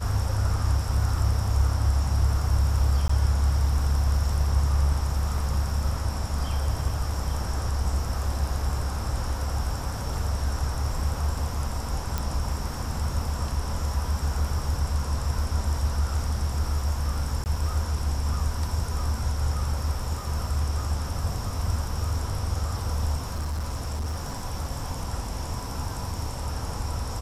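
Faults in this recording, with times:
0:03.08–0:03.09: drop-out 14 ms
0:12.18: click
0:17.44–0:17.46: drop-out 19 ms
0:23.17–0:24.46: clipping −25.5 dBFS

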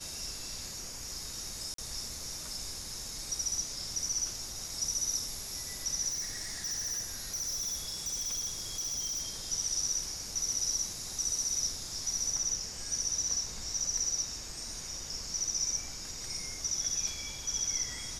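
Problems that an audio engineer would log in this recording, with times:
0:01.74–0:01.78: drop-out 43 ms
0:06.08–0:09.23: clipping −32 dBFS

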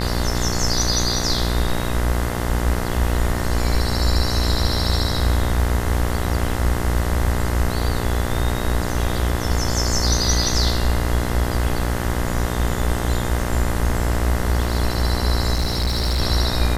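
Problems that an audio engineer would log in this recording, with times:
mains buzz 60 Hz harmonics 35 −24 dBFS
0:15.53–0:16.21: clipping −16.5 dBFS

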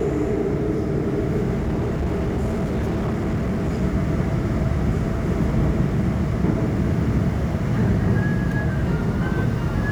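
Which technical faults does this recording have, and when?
0:01.55–0:03.83: clipping −19 dBFS

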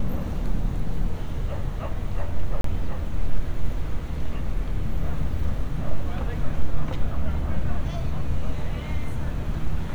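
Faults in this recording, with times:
0:02.61–0:02.64: drop-out 33 ms

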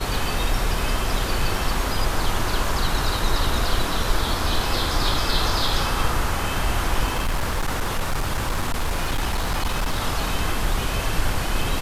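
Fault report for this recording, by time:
0:07.05–0:09.99: clipping −18.5 dBFS

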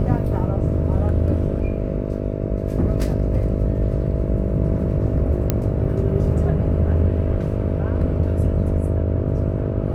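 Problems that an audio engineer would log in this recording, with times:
mains buzz 50 Hz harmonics 13 −25 dBFS
0:05.50: click −5 dBFS

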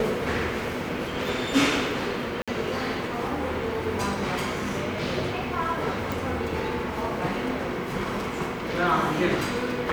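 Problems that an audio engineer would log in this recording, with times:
0:02.42–0:02.48: drop-out 56 ms
0:06.12: click

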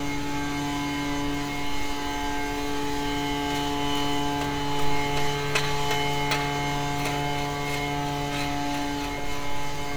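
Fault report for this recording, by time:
surface crackle 10 per second

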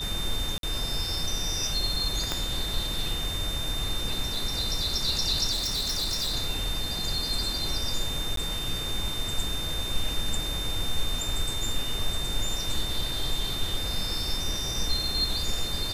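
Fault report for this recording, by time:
whistle 3,600 Hz −32 dBFS
0:00.58–0:00.63: drop-out 52 ms
0:02.32: click −12 dBFS
0:05.51–0:06.34: clipping −25 dBFS
0:08.36–0:08.37: drop-out 13 ms

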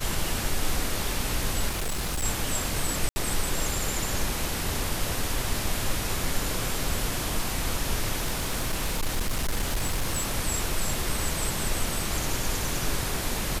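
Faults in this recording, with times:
0:01.68–0:02.25: clipping −25 dBFS
0:03.09–0:03.16: drop-out 70 ms
0:08.19–0:10.36: clipping −22 dBFS

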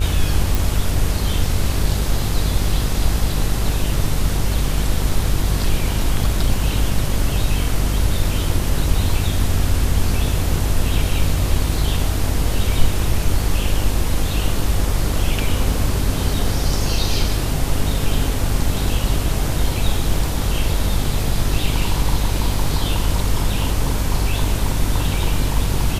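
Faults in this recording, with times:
mains buzz 50 Hz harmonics 33 −22 dBFS
0:00.55: click

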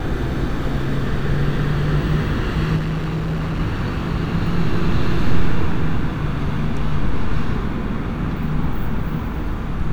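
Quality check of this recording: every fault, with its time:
0:02.76–0:03.60: clipping −18.5 dBFS

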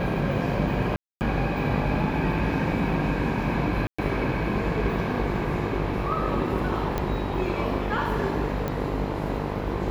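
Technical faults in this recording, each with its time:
mains buzz 50 Hz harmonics 21 −31 dBFS
0:00.96–0:01.21: drop-out 249 ms
0:03.87–0:03.98: drop-out 115 ms
0:06.98: click −13 dBFS
0:08.68: click −16 dBFS

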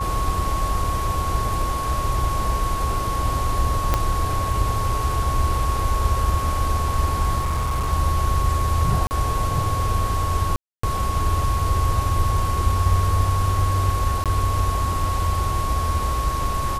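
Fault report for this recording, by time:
whistle 1,100 Hz −25 dBFS
0:03.94: click −5 dBFS
0:07.39–0:07.93: clipping −18.5 dBFS
0:09.07–0:09.11: drop-out 39 ms
0:10.56–0:10.83: drop-out 274 ms
0:14.24–0:14.26: drop-out 17 ms

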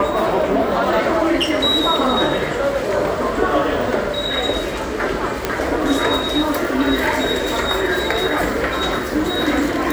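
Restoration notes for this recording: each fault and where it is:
0:05.45: click −4 dBFS

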